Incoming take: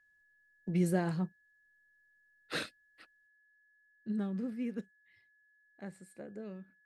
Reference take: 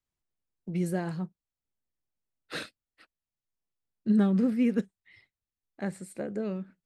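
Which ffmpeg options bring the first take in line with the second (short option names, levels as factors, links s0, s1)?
-af "bandreject=f=1700:w=30,asetnsamples=n=441:p=0,asendcmd='3.27 volume volume 12dB',volume=1"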